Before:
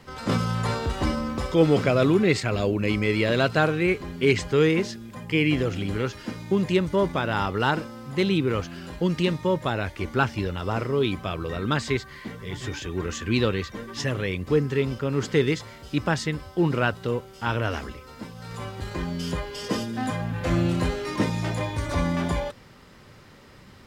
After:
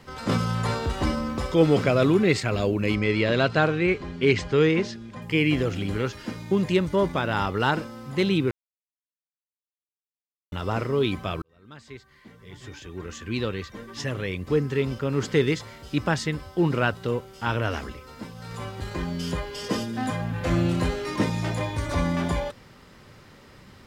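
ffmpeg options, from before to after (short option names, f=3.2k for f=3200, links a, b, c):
-filter_complex "[0:a]asettb=1/sr,asplit=3[a][b][c];[a]atrim=end=2.954[d];[b]atrim=start=2.95:end=5.22,asetpts=PTS-STARTPTS,afade=t=in:d=0.004:c=qsin,afade=t=out:st=2.266:d=0.004:c=qsin,lowpass=5.9k[e];[c]atrim=start=5.216[f];[d][e]acrossfade=d=0.004:c1=hsin:c2=qsin[g];[g][f]acrossfade=d=0.004:c1=qsin:c2=hsin,asplit=4[h][i][j][k];[h]atrim=end=8.51,asetpts=PTS-STARTPTS,afade=t=out:st=8.506:d=0.004:c=hsin[l];[i]atrim=start=8.51:end=10.52,asetpts=PTS-STARTPTS,volume=0[m];[j]atrim=start=10.52:end=11.42,asetpts=PTS-STARTPTS,afade=t=in:d=0.004:c=hsin,afade=t=out:st=0.896:d=0.004:c=hsin[n];[k]atrim=start=11.42,asetpts=PTS-STARTPTS,afade=t=in:d=3.67[o];[l][m][n][o]concat=n=4:v=0:a=1"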